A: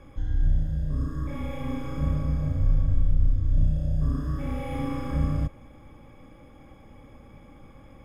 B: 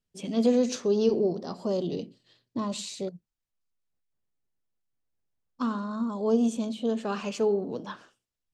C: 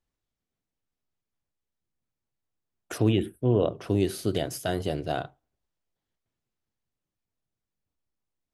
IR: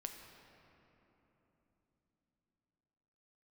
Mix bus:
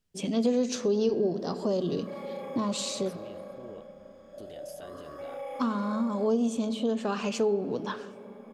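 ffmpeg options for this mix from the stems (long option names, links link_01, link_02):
-filter_complex "[0:a]highpass=frequency=580:width_type=q:width=4.8,adelay=800,volume=-7.5dB,asplit=2[link_01][link_02];[link_02]volume=-7dB[link_03];[1:a]volume=3dB,asplit=2[link_04][link_05];[link_05]volume=-7.5dB[link_06];[2:a]acompressor=threshold=-32dB:ratio=6,adelay=150,volume=-8dB,asplit=3[link_07][link_08][link_09];[link_07]atrim=end=3.81,asetpts=PTS-STARTPTS,afade=type=out:start_time=3.806:duration=0.004:curve=hsin[link_10];[link_08]atrim=start=3.81:end=4.38,asetpts=PTS-STARTPTS,volume=0[link_11];[link_09]atrim=start=4.38,asetpts=PTS-STARTPTS,afade=type=in:duration=0.004:curve=hsin[link_12];[link_10][link_11][link_12]concat=n=3:v=0:a=1[link_13];[link_01][link_13]amix=inputs=2:normalize=0,equalizer=frequency=120:width_type=o:width=0.77:gain=-11.5,alimiter=level_in=11.5dB:limit=-24dB:level=0:latency=1:release=15,volume=-11.5dB,volume=0dB[link_14];[3:a]atrim=start_sample=2205[link_15];[link_03][link_06]amix=inputs=2:normalize=0[link_16];[link_16][link_15]afir=irnorm=-1:irlink=0[link_17];[link_04][link_14][link_17]amix=inputs=3:normalize=0,acompressor=threshold=-28dB:ratio=2"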